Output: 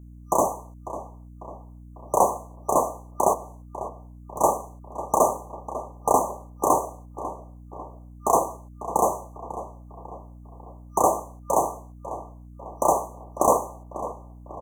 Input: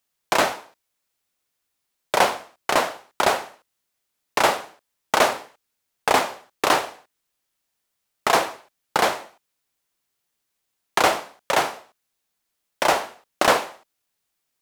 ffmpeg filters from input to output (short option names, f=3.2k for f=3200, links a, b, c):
-filter_complex "[0:a]asettb=1/sr,asplit=3[a][b][c];[a]atrim=end=3.334[d];[b]atrim=start=3.33:end=4.41,asetpts=PTS-STARTPTS,afade=t=in:d=0.004:c=qsin,afade=t=out:st=1.076:d=0.004:c=qsin,acompressor=threshold=-33dB:ratio=6[e];[c]atrim=start=4.406[f];[d][e]acrossfade=d=0.004:c1=hsin:c2=qsin[g];[g][f]acrossfade=d=0.004:c1=qsin:c2=hsin,asplit=2[h][i];[i]adelay=547,lowpass=f=2k:p=1,volume=-12.5dB,asplit=2[j][k];[k]adelay=547,lowpass=f=2k:p=1,volume=0.5,asplit=2[l][m];[m]adelay=547,lowpass=f=2k:p=1,volume=0.5,asplit=2[n][o];[o]adelay=547,lowpass=f=2k:p=1,volume=0.5,asplit=2[p][q];[q]adelay=547,lowpass=f=2k:p=1,volume=0.5[r];[j][l][n][p][r]amix=inputs=5:normalize=0[s];[h][s]amix=inputs=2:normalize=0,aeval=exprs='val(0)+0.00708*(sin(2*PI*60*n/s)+sin(2*PI*2*60*n/s)/2+sin(2*PI*3*60*n/s)/3+sin(2*PI*4*60*n/s)/4+sin(2*PI*5*60*n/s)/5)':c=same,afftfilt=real='re*(1-between(b*sr/4096,1200,5900))':imag='im*(1-between(b*sr/4096,1200,5900))':win_size=4096:overlap=0.75"